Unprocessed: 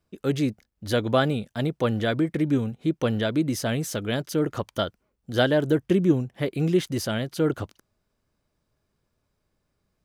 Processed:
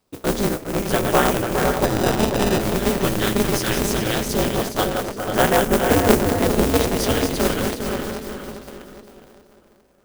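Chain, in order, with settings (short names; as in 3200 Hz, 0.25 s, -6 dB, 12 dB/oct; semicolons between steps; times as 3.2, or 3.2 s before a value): regenerating reverse delay 0.204 s, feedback 62%, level -5 dB; HPF 170 Hz 6 dB/oct; notches 60/120/180/240/300/360/420/480/540 Hz; in parallel at -2 dB: compressor, threshold -36 dBFS, peak gain reduction 20 dB; on the sum: modulation noise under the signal 12 dB; 1.84–2.61 sample-rate reducer 1100 Hz, jitter 0%; LFO notch sine 0.22 Hz 590–4200 Hz; on a send: tape echo 0.49 s, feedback 23%, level -5 dB, low-pass 2200 Hz; on the sum: polarity switched at an audio rate 100 Hz; gain +3.5 dB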